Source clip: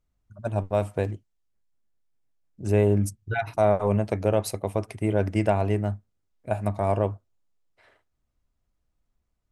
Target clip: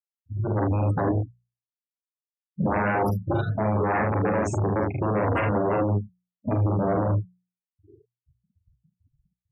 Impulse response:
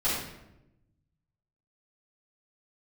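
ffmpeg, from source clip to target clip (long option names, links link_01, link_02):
-filter_complex "[0:a]afftfilt=real='re*pow(10,23/40*sin(2*PI*(0.66*log(max(b,1)*sr/1024/100)/log(2)-(2.4)*(pts-256)/sr)))':imag='im*pow(10,23/40*sin(2*PI*(0.66*log(max(b,1)*sr/1024/100)/log(2)-(2.4)*(pts-256)/sr)))':win_size=1024:overlap=0.75,acrossover=split=330[link_01][link_02];[link_01]aeval=exprs='0.422*sin(PI/2*10*val(0)/0.422)':channel_layout=same[link_03];[link_03][link_02]amix=inputs=2:normalize=0,agate=range=-33dB:threshold=-47dB:ratio=3:detection=peak,asplit=2[link_04][link_05];[link_05]aecho=0:1:38|49|76:0.562|0.531|0.447[link_06];[link_04][link_06]amix=inputs=2:normalize=0,aeval=exprs='1.41*(cos(1*acos(clip(val(0)/1.41,-1,1)))-cos(1*PI/2))+0.01*(cos(4*acos(clip(val(0)/1.41,-1,1)))-cos(4*PI/2))+0.01*(cos(6*acos(clip(val(0)/1.41,-1,1)))-cos(6*PI/2))+0.0126*(cos(8*acos(clip(val(0)/1.41,-1,1)))-cos(8*PI/2))':channel_layout=same,dynaudnorm=framelen=300:gausssize=5:maxgain=5dB,highpass=110,alimiter=limit=-9dB:level=0:latency=1:release=14,afftfilt=real='re*gte(hypot(re,im),0.0251)':imag='im*gte(hypot(re,im),0.0251)':win_size=1024:overlap=0.75,bandreject=frequency=60:width_type=h:width=6,bandreject=frequency=120:width_type=h:width=6,bandreject=frequency=180:width_type=h:width=6,volume=-7dB"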